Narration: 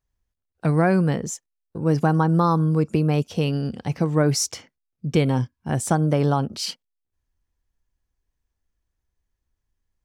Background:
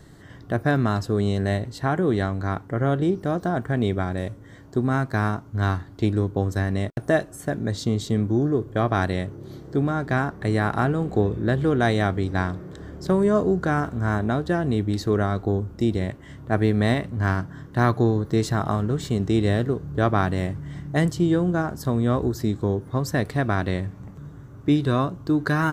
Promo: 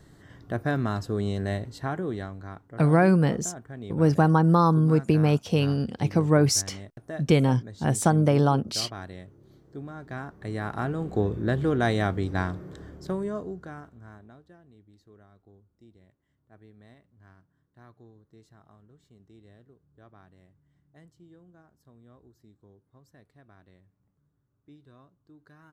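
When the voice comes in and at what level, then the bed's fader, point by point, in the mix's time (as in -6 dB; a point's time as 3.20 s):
2.15 s, -0.5 dB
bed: 1.75 s -5.5 dB
2.68 s -16.5 dB
9.86 s -16.5 dB
11.28 s -3.5 dB
12.73 s -3.5 dB
14.70 s -33.5 dB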